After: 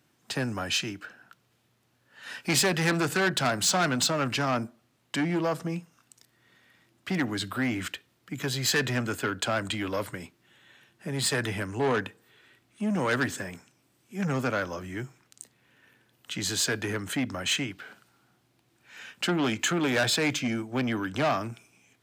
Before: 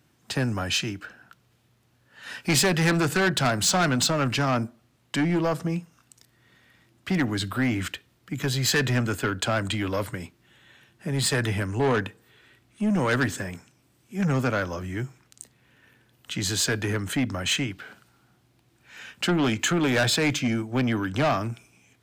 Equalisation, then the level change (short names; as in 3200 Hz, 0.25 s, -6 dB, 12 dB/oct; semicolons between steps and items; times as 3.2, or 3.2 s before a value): HPF 180 Hz 6 dB/oct; -2.0 dB